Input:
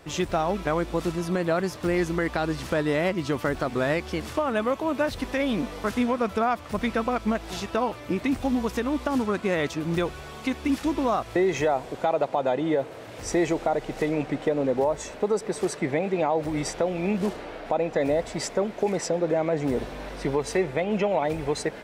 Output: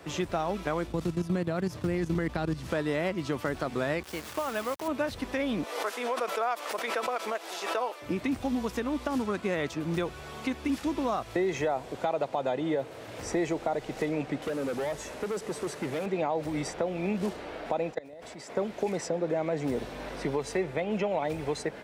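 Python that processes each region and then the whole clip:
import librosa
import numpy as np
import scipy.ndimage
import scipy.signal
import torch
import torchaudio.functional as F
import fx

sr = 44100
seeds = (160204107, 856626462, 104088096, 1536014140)

y = fx.chain(x, sr, fx.level_steps(step_db=14),
    fx.peak_eq(hz=100.0, db=12.5, octaves=2.5), at=(0.87, 2.7))
y = fx.chain(y, sr, fx.low_shelf(hz=410.0, db=-9.0),
    fx.quant_dither(seeds[0], bits=6, dither='none'), at=(4.03, 4.88))
y = fx.chain(y, sr, fx.highpass(hz=410.0, slope=24),
    fx.high_shelf(hz=5700.0, db=4.5),
    fx.pre_swell(db_per_s=65.0), at=(5.63, 8.02))
y = fx.chain(y, sr, fx.delta_mod(bps=64000, step_db=-38.0),
    fx.clip_hard(threshold_db=-25.0), at=(14.42, 16.06))
y = fx.chain(y, sr, fx.highpass(hz=200.0, slope=6),
    fx.level_steps(step_db=22), at=(17.91, 18.57))
y = scipy.signal.sosfilt(scipy.signal.butter(2, 47.0, 'highpass', fs=sr, output='sos'), y)
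y = fx.band_squash(y, sr, depth_pct=40)
y = y * 10.0 ** (-5.0 / 20.0)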